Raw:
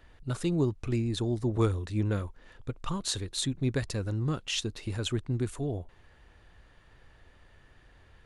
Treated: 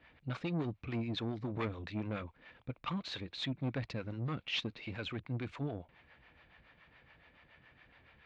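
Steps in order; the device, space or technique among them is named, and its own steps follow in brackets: guitar amplifier with harmonic tremolo (harmonic tremolo 7.1 Hz, depth 70%, crossover 470 Hz; saturation -30.5 dBFS, distortion -11 dB; cabinet simulation 93–4100 Hz, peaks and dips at 97 Hz -8 dB, 390 Hz -7 dB, 2.3 kHz +9 dB); trim +1.5 dB

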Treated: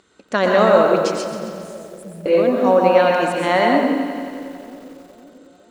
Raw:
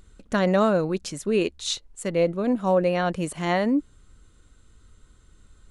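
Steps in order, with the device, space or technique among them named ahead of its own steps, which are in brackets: supermarket ceiling speaker (band-pass 310–6200 Hz; reverberation RT60 0.80 s, pre-delay 113 ms, DRR 0.5 dB); 1.24–2.26 s: elliptic band-stop 180–9900 Hz; two-band feedback delay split 640 Hz, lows 502 ms, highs 135 ms, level -16 dB; bit-crushed delay 90 ms, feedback 80%, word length 8-bit, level -13 dB; trim +6 dB

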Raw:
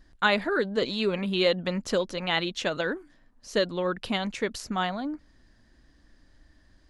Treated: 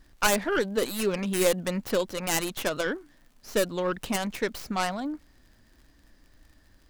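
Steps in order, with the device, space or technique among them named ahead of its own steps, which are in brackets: record under a worn stylus (tracing distortion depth 0.38 ms; crackle 77 per s -48 dBFS; pink noise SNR 41 dB)

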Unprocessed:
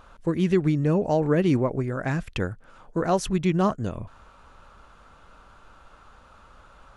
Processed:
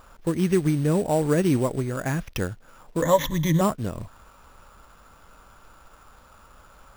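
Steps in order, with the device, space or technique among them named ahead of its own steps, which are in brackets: early companding sampler (sample-rate reducer 8.4 kHz, jitter 0%; companded quantiser 6-bit); 3.02–3.61 s: rippled EQ curve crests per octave 1.1, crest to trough 18 dB

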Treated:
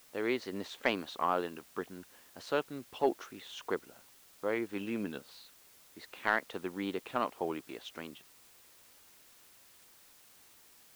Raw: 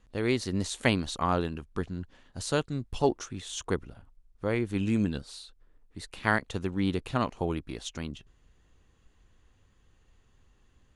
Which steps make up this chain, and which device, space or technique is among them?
tape answering machine (band-pass 360–2900 Hz; saturation -12.5 dBFS, distortion -21 dB; wow and flutter; white noise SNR 22 dB); trim -1.5 dB

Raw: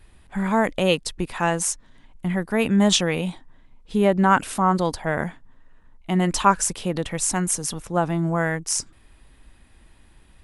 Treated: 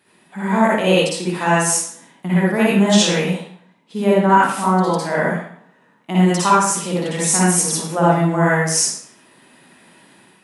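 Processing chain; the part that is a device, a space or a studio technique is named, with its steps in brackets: far laptop microphone (reverberation RT60 0.60 s, pre-delay 49 ms, DRR -7.5 dB; high-pass 170 Hz 24 dB/octave; level rider gain up to 4.5 dB); trim -1 dB

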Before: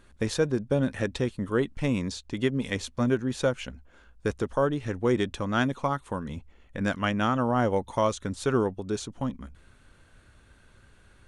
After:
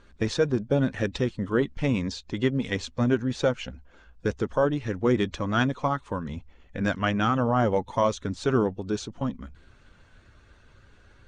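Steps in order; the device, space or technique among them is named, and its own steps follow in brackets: clip after many re-uploads (low-pass 6.8 kHz 24 dB/octave; coarse spectral quantiser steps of 15 dB); trim +2 dB

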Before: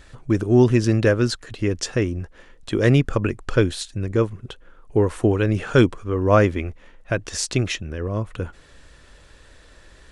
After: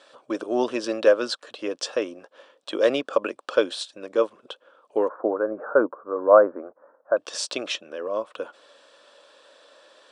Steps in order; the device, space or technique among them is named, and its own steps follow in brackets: 5.08–7.17 s: elliptic low-pass 1.5 kHz, stop band 50 dB; phone speaker on a table (cabinet simulation 340–8400 Hz, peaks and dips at 380 Hz -7 dB, 570 Hz +9 dB, 1.1 kHz +4 dB, 2 kHz -10 dB, 3.4 kHz +4 dB, 6.7 kHz -7 dB); trim -1 dB

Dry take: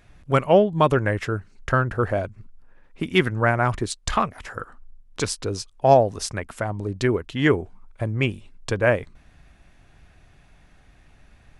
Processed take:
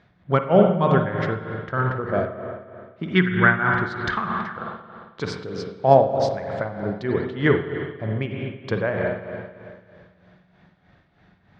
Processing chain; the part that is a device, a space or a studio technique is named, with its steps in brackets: combo amplifier with spring reverb and tremolo (spring tank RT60 2.2 s, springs 44/55 ms, chirp 55 ms, DRR 2.5 dB; tremolo 3.2 Hz, depth 65%; cabinet simulation 110–4300 Hz, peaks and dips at 180 Hz +7 dB, 280 Hz -3 dB, 2.6 kHz -9 dB); 3.13–4.57 s: fifteen-band graphic EQ 630 Hz -9 dB, 1.6 kHz +10 dB, 10 kHz -9 dB; Schroeder reverb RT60 1.1 s, DRR 19 dB; trim +1 dB

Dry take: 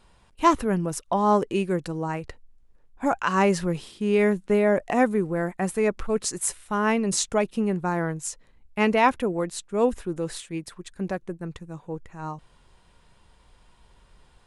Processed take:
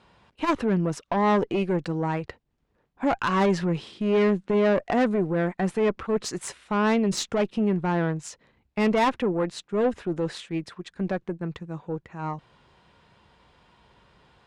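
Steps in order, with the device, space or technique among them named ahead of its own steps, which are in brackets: valve radio (band-pass 96–4200 Hz; valve stage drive 20 dB, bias 0.35; transformer saturation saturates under 180 Hz); trim +4.5 dB

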